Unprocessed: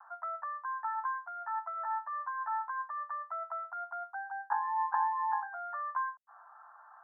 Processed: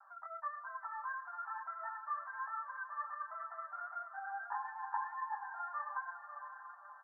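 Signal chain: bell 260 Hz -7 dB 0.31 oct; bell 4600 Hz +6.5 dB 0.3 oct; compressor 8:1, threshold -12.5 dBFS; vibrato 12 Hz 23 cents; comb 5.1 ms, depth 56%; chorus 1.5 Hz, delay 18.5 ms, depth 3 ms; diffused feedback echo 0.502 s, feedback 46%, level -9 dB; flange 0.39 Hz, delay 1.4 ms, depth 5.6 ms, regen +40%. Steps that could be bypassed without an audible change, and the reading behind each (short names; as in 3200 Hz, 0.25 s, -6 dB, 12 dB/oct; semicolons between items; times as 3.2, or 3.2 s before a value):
bell 260 Hz: input band starts at 570 Hz; bell 4600 Hz: input band ends at 1800 Hz; compressor, threshold -12.5 dBFS: input peak -18.5 dBFS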